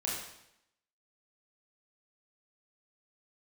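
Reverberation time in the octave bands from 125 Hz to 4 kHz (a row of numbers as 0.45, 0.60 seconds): 0.85, 0.85, 0.80, 0.80, 0.80, 0.75 seconds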